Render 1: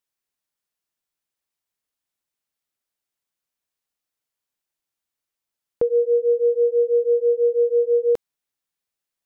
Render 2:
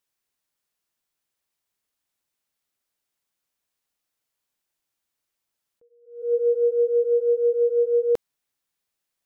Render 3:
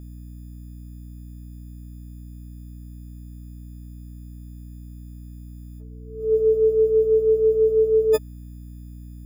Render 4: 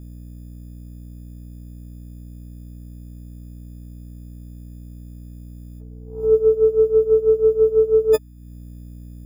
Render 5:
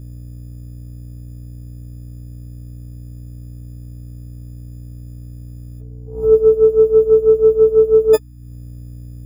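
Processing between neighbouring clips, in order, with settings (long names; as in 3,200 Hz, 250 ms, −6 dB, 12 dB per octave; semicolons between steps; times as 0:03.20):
brickwall limiter −18 dBFS, peak gain reduction 5.5 dB; level that may rise only so fast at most 120 dB per second; level +3.5 dB
every partial snapped to a pitch grid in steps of 6 semitones; mains hum 60 Hz, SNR 14 dB; level +3.5 dB
transient designer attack +10 dB, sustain −5 dB
spectral magnitudes quantised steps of 15 dB; level +4.5 dB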